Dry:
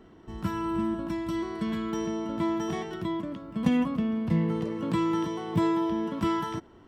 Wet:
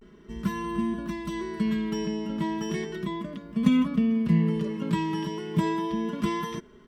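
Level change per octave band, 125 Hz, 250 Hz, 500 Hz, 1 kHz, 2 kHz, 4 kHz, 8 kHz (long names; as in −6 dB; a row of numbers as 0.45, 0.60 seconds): +3.0 dB, +1.5 dB, −1.0 dB, −1.0 dB, +2.5 dB, +2.5 dB, can't be measured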